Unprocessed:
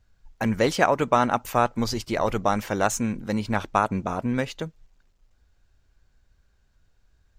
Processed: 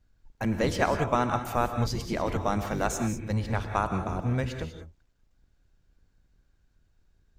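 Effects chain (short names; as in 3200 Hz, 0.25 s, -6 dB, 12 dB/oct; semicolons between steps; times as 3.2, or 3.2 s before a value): octaver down 1 oct, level +2 dB; non-linear reverb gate 0.22 s rising, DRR 6.5 dB; gain -6 dB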